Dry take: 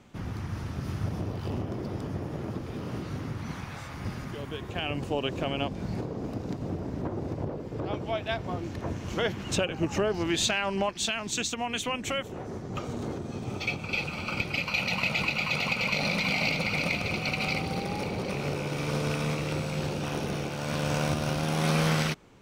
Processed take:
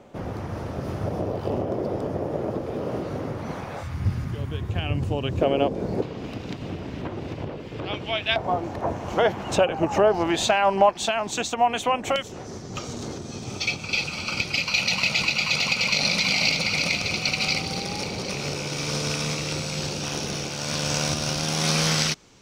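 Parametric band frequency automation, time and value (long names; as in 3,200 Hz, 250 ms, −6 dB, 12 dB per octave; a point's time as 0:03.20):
parametric band +14.5 dB 1.5 octaves
560 Hz
from 0:03.83 90 Hz
from 0:05.41 470 Hz
from 0:06.02 2,900 Hz
from 0:08.36 760 Hz
from 0:12.16 5,600 Hz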